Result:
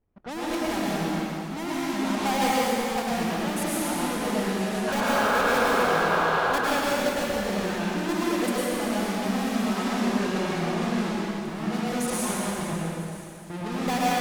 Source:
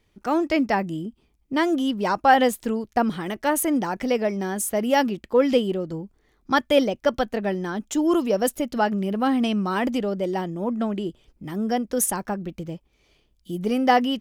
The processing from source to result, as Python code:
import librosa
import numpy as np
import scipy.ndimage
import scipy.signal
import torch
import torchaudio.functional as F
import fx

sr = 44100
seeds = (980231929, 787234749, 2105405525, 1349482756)

p1 = fx.halfwave_hold(x, sr)
p2 = fx.env_lowpass(p1, sr, base_hz=1300.0, full_db=-14.5)
p3 = fx.level_steps(p2, sr, step_db=14)
p4 = fx.spec_paint(p3, sr, seeds[0], shape='noise', start_s=4.87, length_s=1.52, low_hz=370.0, high_hz=1700.0, level_db=-21.0)
p5 = 10.0 ** (-21.5 / 20.0) * np.tanh(p4 / 10.0 ** (-21.5 / 20.0))
p6 = p5 + fx.echo_wet_highpass(p5, sr, ms=990, feedback_pct=77, hz=5300.0, wet_db=-18, dry=0)
p7 = fx.rev_plate(p6, sr, seeds[1], rt60_s=2.7, hf_ratio=0.95, predelay_ms=90, drr_db=-7.5)
y = F.gain(torch.from_numpy(p7), -5.5).numpy()